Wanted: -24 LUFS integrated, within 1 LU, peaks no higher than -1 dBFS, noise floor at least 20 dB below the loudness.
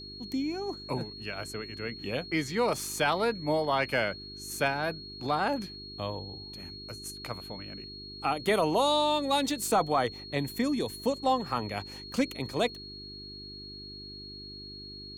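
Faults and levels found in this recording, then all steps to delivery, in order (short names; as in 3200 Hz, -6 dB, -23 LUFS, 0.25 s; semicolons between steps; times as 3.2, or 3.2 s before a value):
hum 50 Hz; harmonics up to 400 Hz; hum level -47 dBFS; steady tone 4300 Hz; tone level -43 dBFS; loudness -30.5 LUFS; peak -15.5 dBFS; loudness target -24.0 LUFS
-> de-hum 50 Hz, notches 8; notch 4300 Hz, Q 30; gain +6.5 dB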